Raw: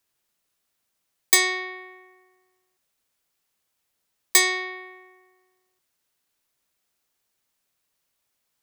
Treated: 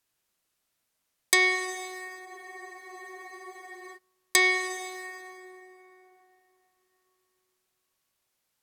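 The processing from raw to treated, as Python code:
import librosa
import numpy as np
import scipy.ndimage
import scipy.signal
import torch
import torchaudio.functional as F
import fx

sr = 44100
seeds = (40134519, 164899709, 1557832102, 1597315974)

y = fx.rev_plate(x, sr, seeds[0], rt60_s=3.7, hf_ratio=0.5, predelay_ms=0, drr_db=6.0)
y = fx.env_lowpass_down(y, sr, base_hz=1800.0, full_db=-10.5)
y = fx.spec_freeze(y, sr, seeds[1], at_s=2.27, hold_s=1.69)
y = y * librosa.db_to_amplitude(-1.5)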